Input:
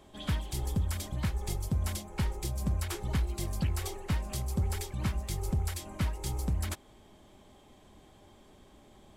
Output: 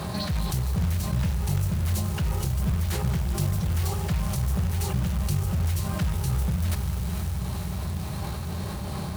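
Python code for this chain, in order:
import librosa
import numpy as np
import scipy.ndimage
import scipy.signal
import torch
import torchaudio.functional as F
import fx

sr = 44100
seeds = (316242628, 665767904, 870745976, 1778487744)

y = scipy.signal.sosfilt(scipy.signal.butter(4, 65.0, 'highpass', fs=sr, output='sos'), x)
y = np.clip(y, -10.0 ** (-33.5 / 20.0), 10.0 ** (-33.5 / 20.0))
y = fx.tremolo_shape(y, sr, shape='triangle', hz=2.7, depth_pct=65)
y = fx.echo_diffused(y, sr, ms=503, feedback_pct=56, wet_db=-13.5)
y = fx.formant_shift(y, sr, semitones=4)
y = fx.low_shelf_res(y, sr, hz=210.0, db=7.0, q=3.0)
y = fx.rev_schroeder(y, sr, rt60_s=3.2, comb_ms=28, drr_db=13.0)
y = fx.quant_float(y, sr, bits=2)
y = fx.env_flatten(y, sr, amount_pct=70)
y = F.gain(torch.from_numpy(y), 2.5).numpy()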